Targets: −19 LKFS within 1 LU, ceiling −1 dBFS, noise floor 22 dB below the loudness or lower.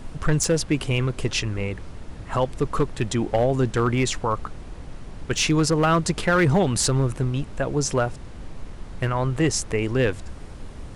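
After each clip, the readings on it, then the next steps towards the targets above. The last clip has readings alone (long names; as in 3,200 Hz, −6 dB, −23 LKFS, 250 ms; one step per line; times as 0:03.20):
share of clipped samples 0.8%; peaks flattened at −13.0 dBFS; background noise floor −39 dBFS; target noise floor −45 dBFS; integrated loudness −23.0 LKFS; sample peak −13.0 dBFS; target loudness −19.0 LKFS
→ clipped peaks rebuilt −13 dBFS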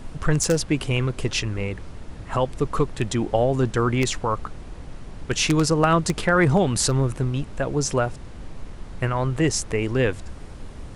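share of clipped samples 0.0%; background noise floor −39 dBFS; target noise floor −45 dBFS
→ noise reduction from a noise print 6 dB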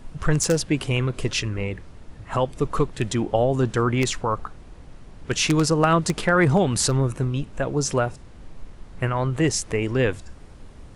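background noise floor −45 dBFS; integrated loudness −23.0 LKFS; sample peak −4.0 dBFS; target loudness −19.0 LKFS
→ level +4 dB
brickwall limiter −1 dBFS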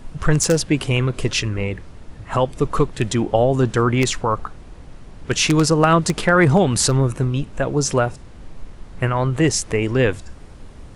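integrated loudness −19.0 LKFS; sample peak −1.0 dBFS; background noise floor −41 dBFS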